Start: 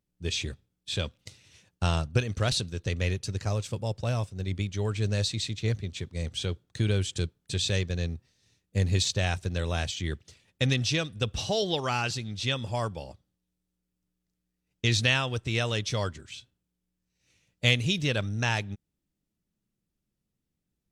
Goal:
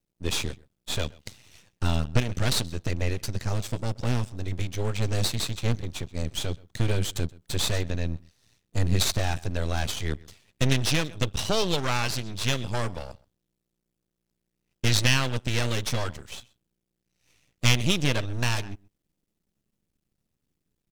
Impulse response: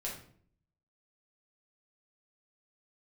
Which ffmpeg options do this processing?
-filter_complex "[0:a]asplit=2[link_01][link_02];[link_02]adelay=128.3,volume=-23dB,highshelf=frequency=4000:gain=-2.89[link_03];[link_01][link_03]amix=inputs=2:normalize=0,aeval=exprs='max(val(0),0)':channel_layout=same,volume=7dB"

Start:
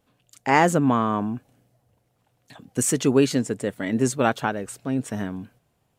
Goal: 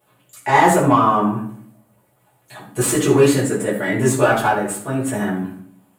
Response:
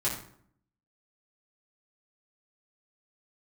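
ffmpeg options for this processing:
-filter_complex "[0:a]aexciter=amount=6.6:drive=4.3:freq=7800,asplit=2[link_01][link_02];[link_02]highpass=frequency=720:poles=1,volume=20dB,asoftclip=type=tanh:threshold=-0.5dB[link_03];[link_01][link_03]amix=inputs=2:normalize=0,lowpass=frequency=2100:poles=1,volume=-6dB[link_04];[1:a]atrim=start_sample=2205[link_05];[link_04][link_05]afir=irnorm=-1:irlink=0,volume=-8dB"

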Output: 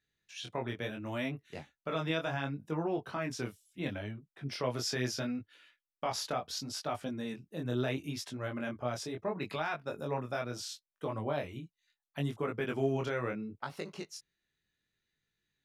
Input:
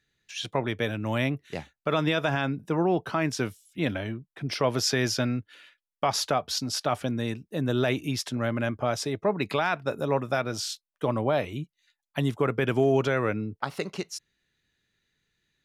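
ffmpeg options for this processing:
ffmpeg -i in.wav -af "flanger=delay=19:depth=6:speed=0.72,volume=-6dB" out.wav

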